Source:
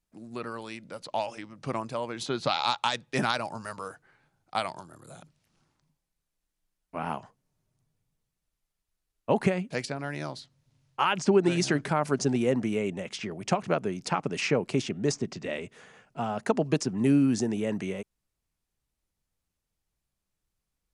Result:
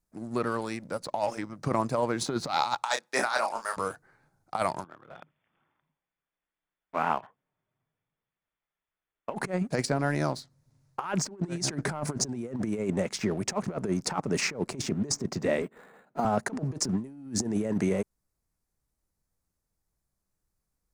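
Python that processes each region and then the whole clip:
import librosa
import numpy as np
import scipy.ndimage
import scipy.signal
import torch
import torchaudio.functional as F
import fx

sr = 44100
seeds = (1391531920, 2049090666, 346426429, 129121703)

y = fx.chain(x, sr, fx.highpass(hz=650.0, slope=12),
    fx.doubler(ms=31.0, db=-6), at=(2.83, 3.77))
y = fx.chain(y, sr, fx.brickwall_lowpass(high_hz=3600.0),
    fx.tilt_eq(slope=4.0), at=(4.84, 9.34))
y = fx.chain(y, sr, fx.highpass(hz=180.0, slope=24),
    fx.resample_linear(factor=8), at=(15.62, 16.25))
y = fx.peak_eq(y, sr, hz=3000.0, db=-13.0, octaves=0.8)
y = fx.leveller(y, sr, passes=1)
y = fx.over_compress(y, sr, threshold_db=-28.0, ratio=-0.5)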